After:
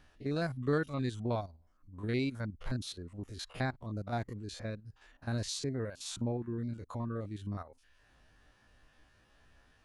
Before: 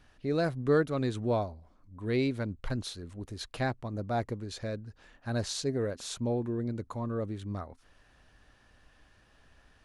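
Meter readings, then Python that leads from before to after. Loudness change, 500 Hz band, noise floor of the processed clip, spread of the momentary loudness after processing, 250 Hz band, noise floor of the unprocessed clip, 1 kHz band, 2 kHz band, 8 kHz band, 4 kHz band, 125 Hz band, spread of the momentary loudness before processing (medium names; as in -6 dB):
-4.5 dB, -7.0 dB, -67 dBFS, 11 LU, -4.0 dB, -63 dBFS, -4.5 dB, -3.0 dB, -2.5 dB, -2.5 dB, -2.0 dB, 12 LU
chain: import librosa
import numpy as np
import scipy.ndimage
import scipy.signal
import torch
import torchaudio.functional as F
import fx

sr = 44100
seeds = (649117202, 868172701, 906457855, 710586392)

y = fx.spec_steps(x, sr, hold_ms=50)
y = fx.dynamic_eq(y, sr, hz=500.0, q=0.95, threshold_db=-43.0, ratio=4.0, max_db=-6)
y = fx.dereverb_blind(y, sr, rt60_s=0.62)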